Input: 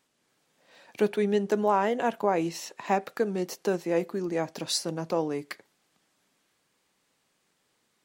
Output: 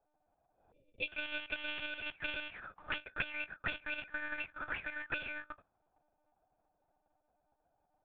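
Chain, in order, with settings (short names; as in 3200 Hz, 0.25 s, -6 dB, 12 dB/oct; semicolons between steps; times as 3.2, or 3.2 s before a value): sample-rate reducer 1000 Hz, jitter 0%; auto-wah 790–3000 Hz, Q 8.9, up, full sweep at -23 dBFS; spectral delete 0.71–1.09, 590–2200 Hz; treble ducked by the level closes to 2500 Hz, closed at -46 dBFS; monotone LPC vocoder at 8 kHz 300 Hz; gain +11 dB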